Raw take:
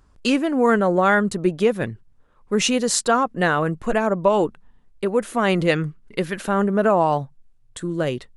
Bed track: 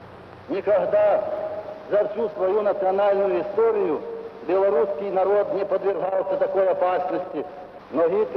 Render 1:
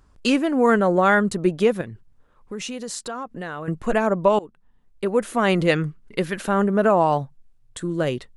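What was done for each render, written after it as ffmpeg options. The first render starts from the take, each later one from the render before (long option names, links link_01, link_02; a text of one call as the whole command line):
ffmpeg -i in.wav -filter_complex "[0:a]asettb=1/sr,asplit=3[link_01][link_02][link_03];[link_01]atrim=end=1.814[link_04];[link_02]atrim=start=1.81:end=3.68,asetpts=PTS-STARTPTS,afade=type=in:duration=0.004:curve=qsin,afade=type=out:start_time=1.866:duration=0.004:curve=qsin,acompressor=threshold=-32dB:ratio=3:attack=3.2:release=140:knee=1:detection=peak[link_05];[link_03]atrim=start=3.676[link_06];[link_04][link_05]acrossfade=duration=0.004:curve1=hsin:curve2=qsin[link_07];[link_07][link_06]acrossfade=duration=0.004:curve1=qsin:curve2=hsin,asplit=2[link_08][link_09];[link_08]atrim=end=4.39,asetpts=PTS-STARTPTS,afade=type=out:start_time=4.386:duration=0.004:curve=hsin:silence=0.0668344[link_10];[link_09]atrim=start=4.39,asetpts=PTS-STARTPTS,afade=type=in:duration=0.77:silence=0.0668344[link_11];[link_10][link_11]concat=n=2:v=0:a=1" out.wav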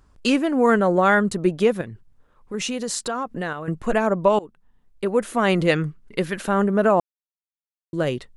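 ffmpeg -i in.wav -filter_complex "[0:a]asplit=5[link_01][link_02][link_03][link_04][link_05];[link_01]atrim=end=2.542[link_06];[link_02]atrim=start=2.538:end=3.532,asetpts=PTS-STARTPTS,volume=4.5dB[link_07];[link_03]atrim=start=3.528:end=7,asetpts=PTS-STARTPTS,afade=type=out:start_time=3.468:duration=0.004:curve=hsin[link_08];[link_04]atrim=start=7:end=7.93,asetpts=PTS-STARTPTS,volume=0[link_09];[link_05]atrim=start=7.93,asetpts=PTS-STARTPTS,afade=type=in:duration=0.004:curve=hsin[link_10];[link_06][link_07]acrossfade=duration=0.004:curve1=hsin:curve2=hsin[link_11];[link_08][link_09][link_10]concat=n=3:v=0:a=1[link_12];[link_11][link_12]acrossfade=duration=0.004:curve1=hsin:curve2=hsin" out.wav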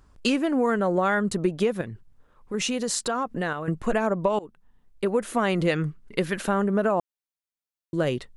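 ffmpeg -i in.wav -af "acompressor=threshold=-19dB:ratio=6" out.wav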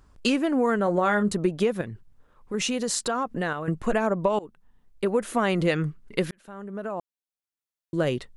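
ffmpeg -i in.wav -filter_complex "[0:a]asettb=1/sr,asplit=3[link_01][link_02][link_03];[link_01]atrim=end=0.844[link_04];[link_02]atrim=start=0.84:end=1.33,asetpts=PTS-STARTPTS,afade=type=in:duration=0.004:curve=qsin,afade=type=out:start_time=0.486:duration=0.004:curve=qsin,asplit=2[link_05][link_06];[link_06]adelay=24,volume=-9.5dB[link_07];[link_05][link_07]amix=inputs=2:normalize=0,atrim=end_sample=21609[link_08];[link_03]atrim=start=1.326[link_09];[link_04][link_08]acrossfade=duration=0.004:curve1=hsin:curve2=qsin[link_10];[link_10][link_09]acrossfade=duration=0.004:curve1=qsin:curve2=hsin,asplit=2[link_11][link_12];[link_11]atrim=end=6.31,asetpts=PTS-STARTPTS,afade=type=out:start_time=6.306:duration=0.004:curve=hsin[link_13];[link_12]atrim=start=6.31,asetpts=PTS-STARTPTS,afade=type=in:duration=1.69[link_14];[link_13][link_14]concat=n=2:v=0:a=1" out.wav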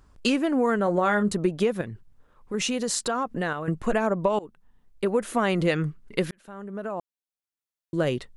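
ffmpeg -i in.wav -af anull out.wav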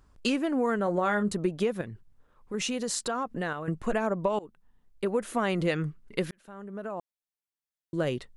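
ffmpeg -i in.wav -af "volume=-4dB" out.wav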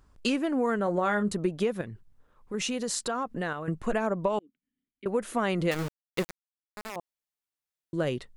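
ffmpeg -i in.wav -filter_complex "[0:a]asettb=1/sr,asplit=3[link_01][link_02][link_03];[link_01]atrim=end=4.394[link_04];[link_02]atrim=start=4.39:end=5.06,asetpts=PTS-STARTPTS,afade=type=in:duration=0.004:curve=qsin,afade=type=out:start_time=0.666:duration=0.004:curve=qsin,asplit=3[link_05][link_06][link_07];[link_05]bandpass=frequency=270:width_type=q:width=8,volume=0dB[link_08];[link_06]bandpass=frequency=2290:width_type=q:width=8,volume=-6dB[link_09];[link_07]bandpass=frequency=3010:width_type=q:width=8,volume=-9dB[link_10];[link_08][link_09][link_10]amix=inputs=3:normalize=0[link_11];[link_03]atrim=start=5.056[link_12];[link_04][link_11]acrossfade=duration=0.004:curve1=hsin:curve2=qsin[link_13];[link_13][link_12]acrossfade=duration=0.004:curve1=qsin:curve2=hsin,asettb=1/sr,asplit=3[link_14][link_15][link_16];[link_14]atrim=end=5.714[link_17];[link_15]atrim=start=5.71:end=6.96,asetpts=PTS-STARTPTS,afade=type=in:duration=0.004:curve=qsin,afade=type=out:start_time=1.246:duration=0.004:curve=qsin,aeval=exprs='val(0)*gte(abs(val(0)),0.0316)':channel_layout=same[link_18];[link_16]atrim=start=6.956[link_19];[link_17][link_18]acrossfade=duration=0.004:curve1=hsin:curve2=qsin[link_20];[link_20][link_19]acrossfade=duration=0.004:curve1=qsin:curve2=hsin" out.wav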